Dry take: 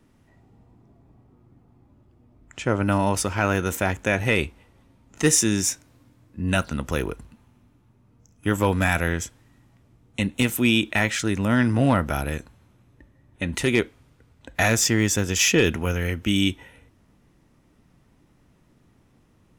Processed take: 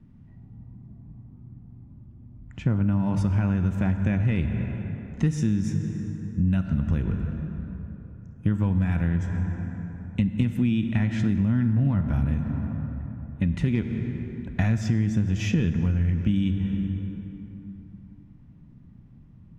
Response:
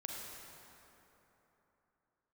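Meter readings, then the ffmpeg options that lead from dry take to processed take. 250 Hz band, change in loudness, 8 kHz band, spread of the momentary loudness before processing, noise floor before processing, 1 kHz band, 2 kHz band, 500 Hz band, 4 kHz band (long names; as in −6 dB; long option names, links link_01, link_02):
0.0 dB, −3.0 dB, below −20 dB, 13 LU, −60 dBFS, −13.0 dB, −13.5 dB, −12.5 dB, −16.5 dB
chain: -filter_complex "[0:a]lowshelf=frequency=280:width_type=q:width=1.5:gain=13.5,asplit=2[link_01][link_02];[1:a]atrim=start_sample=2205,lowpass=7100[link_03];[link_02][link_03]afir=irnorm=-1:irlink=0,volume=-2.5dB[link_04];[link_01][link_04]amix=inputs=2:normalize=0,acompressor=threshold=-12dB:ratio=6,aemphasis=mode=reproduction:type=75fm,bandreject=frequency=1300:width=20,volume=-8.5dB"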